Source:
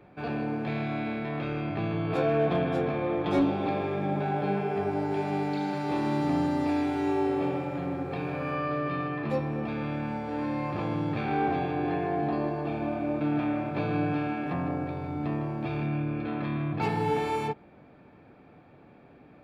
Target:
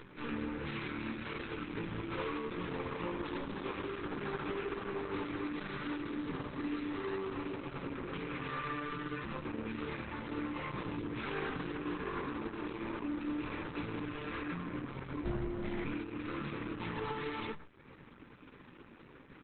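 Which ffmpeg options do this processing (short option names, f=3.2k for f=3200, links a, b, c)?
-filter_complex "[0:a]acompressor=mode=upward:threshold=-38dB:ratio=2.5,bandreject=f=50:t=h:w=6,bandreject=f=100:t=h:w=6,bandreject=f=150:t=h:w=6,bandreject=f=200:t=h:w=6,bandreject=f=250:t=h:w=6,aecho=1:1:105:0.1,aeval=exprs='max(val(0),0)':c=same,asuperstop=centerf=680:order=4:qfactor=1.6,asplit=3[a][b][c];[a]afade=t=out:st=2.67:d=0.02[d];[b]adynamicequalizer=threshold=0.00178:dfrequency=900:dqfactor=7.1:tfrequency=900:tqfactor=7.1:attack=5:release=100:ratio=0.375:range=3:mode=boostabove:tftype=bell,afade=t=in:st=2.67:d=0.02,afade=t=out:st=3.44:d=0.02[e];[c]afade=t=in:st=3.44:d=0.02[f];[d][e][f]amix=inputs=3:normalize=0,asplit=3[g][h][i];[g]afade=t=out:st=5.22:d=0.02[j];[h]asplit=2[k][l];[l]adelay=21,volume=-7.5dB[m];[k][m]amix=inputs=2:normalize=0,afade=t=in:st=5.22:d=0.02,afade=t=out:st=6.21:d=0.02[n];[i]afade=t=in:st=6.21:d=0.02[o];[j][n][o]amix=inputs=3:normalize=0,flanger=delay=15:depth=2.8:speed=1.4,lowshelf=f=490:g=-4,asplit=3[p][q][r];[p]afade=t=out:st=15.23:d=0.02[s];[q]afreqshift=-350,afade=t=in:st=15.23:d=0.02,afade=t=out:st=15.84:d=0.02[t];[r]afade=t=in:st=15.84:d=0.02[u];[s][t][u]amix=inputs=3:normalize=0,alimiter=level_in=8dB:limit=-24dB:level=0:latency=1:release=90,volume=-8dB,volume=7dB" -ar 48000 -c:a libopus -b:a 8k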